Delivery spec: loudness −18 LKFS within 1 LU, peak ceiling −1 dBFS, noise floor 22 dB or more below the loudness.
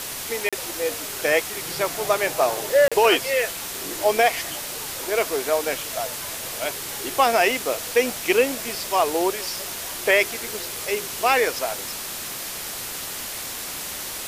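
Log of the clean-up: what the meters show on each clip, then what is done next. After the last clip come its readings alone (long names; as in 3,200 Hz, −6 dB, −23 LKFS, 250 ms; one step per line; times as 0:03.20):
number of dropouts 2; longest dropout 36 ms; background noise floor −32 dBFS; target noise floor −45 dBFS; integrated loudness −23.0 LKFS; sample peak −6.0 dBFS; target loudness −18.0 LKFS
→ repair the gap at 0:00.49/0:02.88, 36 ms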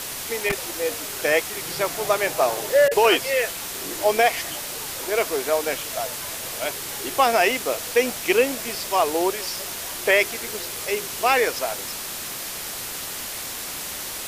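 number of dropouts 0; background noise floor −32 dBFS; target noise floor −45 dBFS
→ noise reduction from a noise print 13 dB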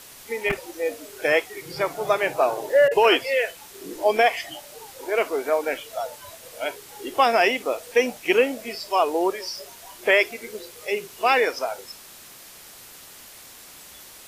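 background noise floor −45 dBFS; integrated loudness −23.0 LKFS; sample peak −6.5 dBFS; target loudness −18.0 LKFS
→ level +5 dB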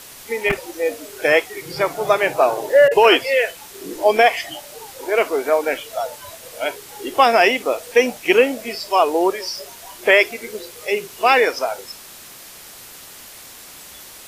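integrated loudness −18.0 LKFS; sample peak −1.5 dBFS; background noise floor −40 dBFS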